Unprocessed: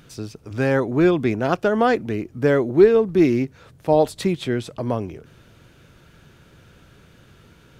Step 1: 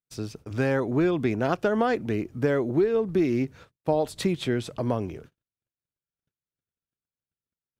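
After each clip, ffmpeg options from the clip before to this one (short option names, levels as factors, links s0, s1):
-af "agate=range=0.00282:threshold=0.00708:ratio=16:detection=peak,acompressor=threshold=0.126:ratio=6,volume=0.841"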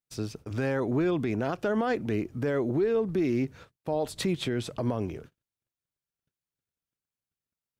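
-af "alimiter=limit=0.112:level=0:latency=1:release=46"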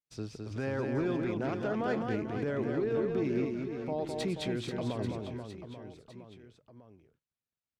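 -af "adynamicsmooth=sensitivity=4:basefreq=7700,aecho=1:1:210|483|837.9|1299|1899:0.631|0.398|0.251|0.158|0.1,volume=0.501"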